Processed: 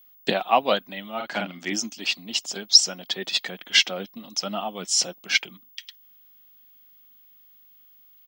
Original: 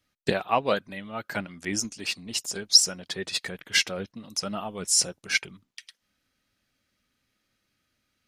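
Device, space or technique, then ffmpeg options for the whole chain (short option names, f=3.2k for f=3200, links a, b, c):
old television with a line whistle: -filter_complex "[0:a]highpass=f=190:w=0.5412,highpass=f=190:w=1.3066,equalizer=f=430:t=q:w=4:g=-5,equalizer=f=740:t=q:w=4:g=5,equalizer=f=1.6k:t=q:w=4:g=-3,equalizer=f=3.2k:t=q:w=4:g=8,lowpass=f=6.8k:w=0.5412,lowpass=f=6.8k:w=1.3066,aeval=exprs='val(0)+0.002*sin(2*PI*15625*n/s)':c=same,asplit=3[a][b][c];[a]afade=t=out:st=1.19:d=0.02[d];[b]asplit=2[e][f];[f]adelay=46,volume=-4dB[g];[e][g]amix=inputs=2:normalize=0,afade=t=in:st=1.19:d=0.02,afade=t=out:st=1.72:d=0.02[h];[c]afade=t=in:st=1.72:d=0.02[i];[d][h][i]amix=inputs=3:normalize=0,volume=2.5dB"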